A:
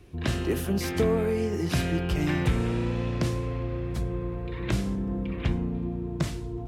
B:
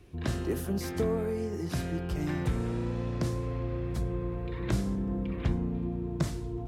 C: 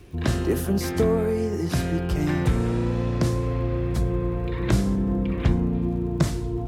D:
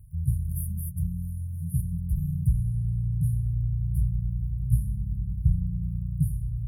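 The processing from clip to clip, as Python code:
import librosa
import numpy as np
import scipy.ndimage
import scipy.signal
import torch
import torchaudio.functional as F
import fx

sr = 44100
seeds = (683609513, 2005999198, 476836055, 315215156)

y1 = fx.dynamic_eq(x, sr, hz=2700.0, q=1.4, threshold_db=-51.0, ratio=4.0, max_db=-7)
y1 = fx.rider(y1, sr, range_db=10, speed_s=2.0)
y1 = y1 * librosa.db_to_amplitude(-4.0)
y2 = fx.dmg_crackle(y1, sr, seeds[0], per_s=72.0, level_db=-54.0)
y2 = y2 * librosa.db_to_amplitude(8.0)
y3 = fx.brickwall_bandstop(y2, sr, low_hz=170.0, high_hz=9300.0)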